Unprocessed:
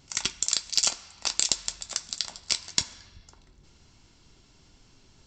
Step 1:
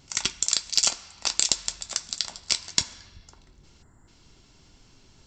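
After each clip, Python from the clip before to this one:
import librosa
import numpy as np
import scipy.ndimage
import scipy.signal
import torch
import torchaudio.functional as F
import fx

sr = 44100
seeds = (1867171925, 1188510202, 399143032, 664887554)

y = fx.spec_box(x, sr, start_s=3.83, length_s=0.25, low_hz=2100.0, high_hz=6900.0, gain_db=-23)
y = F.gain(torch.from_numpy(y), 2.0).numpy()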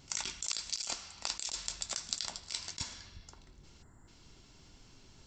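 y = fx.over_compress(x, sr, threshold_db=-30.0, ratio=-1.0)
y = F.gain(torch.from_numpy(y), -7.0).numpy()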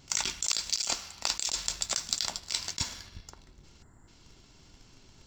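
y = fx.leveller(x, sr, passes=1)
y = F.gain(torch.from_numpy(y), 3.5).numpy()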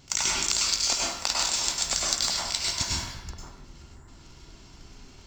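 y = fx.rev_plate(x, sr, seeds[0], rt60_s=0.79, hf_ratio=0.55, predelay_ms=90, drr_db=-4.0)
y = F.gain(torch.from_numpy(y), 2.0).numpy()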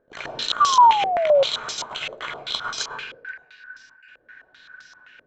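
y = fx.band_shuffle(x, sr, order='3142')
y = fx.spec_paint(y, sr, seeds[1], shape='fall', start_s=0.6, length_s=0.84, low_hz=530.0, high_hz=1200.0, level_db=-18.0)
y = fx.filter_held_lowpass(y, sr, hz=7.7, low_hz=520.0, high_hz=5300.0)
y = F.gain(torch.from_numpy(y), -4.0).numpy()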